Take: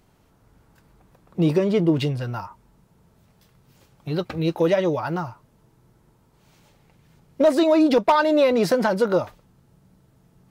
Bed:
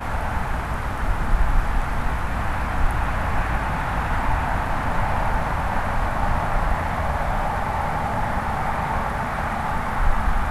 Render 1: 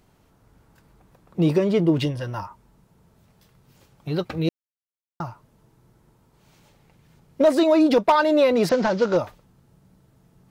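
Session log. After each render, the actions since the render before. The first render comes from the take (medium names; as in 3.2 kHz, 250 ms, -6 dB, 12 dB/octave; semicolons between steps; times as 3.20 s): 2.03–2.43 s: rippled EQ curve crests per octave 1.2, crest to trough 8 dB; 4.49–5.20 s: mute; 8.69–9.17 s: CVSD coder 32 kbps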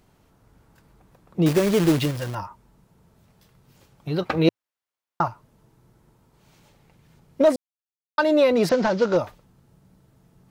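1.46–2.35 s: companded quantiser 4-bit; 4.22–5.28 s: FFT filter 110 Hz 0 dB, 1 kHz +12 dB, 9.5 kHz +1 dB; 7.56–8.18 s: mute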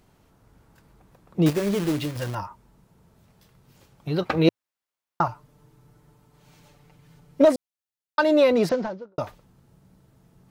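1.50–2.16 s: feedback comb 100 Hz, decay 0.33 s; 5.28–7.45 s: comb 6.8 ms; 8.47–9.18 s: studio fade out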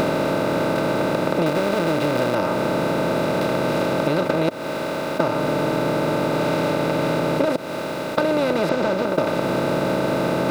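spectral levelling over time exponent 0.2; compression, threshold -17 dBFS, peak gain reduction 10.5 dB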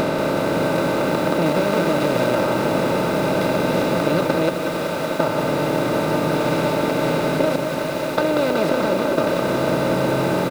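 on a send: delay 625 ms -11.5 dB; on the sum: bit-crushed delay 186 ms, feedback 80%, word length 6-bit, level -7 dB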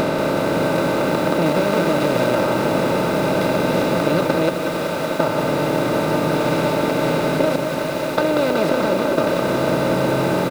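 trim +1 dB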